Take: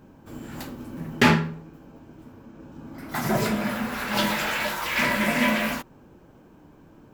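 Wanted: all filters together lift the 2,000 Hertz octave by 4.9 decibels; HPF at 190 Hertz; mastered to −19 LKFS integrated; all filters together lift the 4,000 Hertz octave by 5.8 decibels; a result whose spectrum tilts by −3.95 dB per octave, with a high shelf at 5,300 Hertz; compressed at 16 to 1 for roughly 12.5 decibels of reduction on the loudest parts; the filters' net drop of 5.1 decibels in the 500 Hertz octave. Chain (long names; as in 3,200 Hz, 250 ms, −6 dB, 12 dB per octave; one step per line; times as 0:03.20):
high-pass filter 190 Hz
parametric band 500 Hz −7 dB
parametric band 2,000 Hz +5 dB
parametric band 4,000 Hz +8 dB
high-shelf EQ 5,300 Hz −5.5 dB
downward compressor 16 to 1, threshold −23 dBFS
level +8.5 dB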